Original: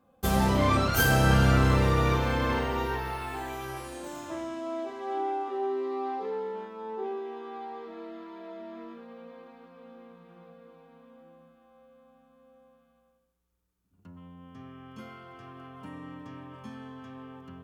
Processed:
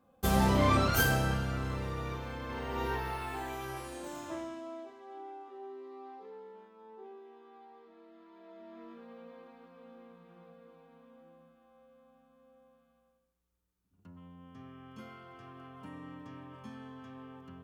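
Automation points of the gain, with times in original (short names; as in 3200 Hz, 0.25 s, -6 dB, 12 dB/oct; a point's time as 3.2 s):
0.95 s -2 dB
1.46 s -13.5 dB
2.47 s -13.5 dB
2.87 s -3 dB
4.33 s -3 dB
5.08 s -15.5 dB
8.07 s -15.5 dB
9.06 s -4 dB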